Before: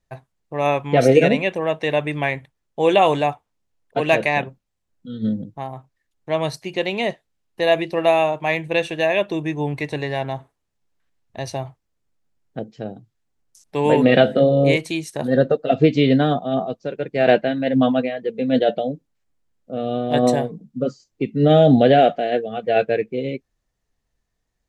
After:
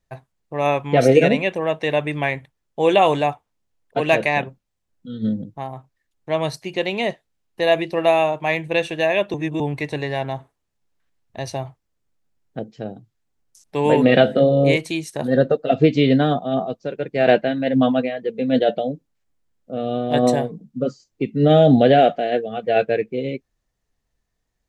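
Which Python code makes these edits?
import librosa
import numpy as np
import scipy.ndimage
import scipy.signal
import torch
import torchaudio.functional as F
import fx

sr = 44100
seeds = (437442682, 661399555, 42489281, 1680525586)

y = fx.edit(x, sr, fx.reverse_span(start_s=9.34, length_s=0.26), tone=tone)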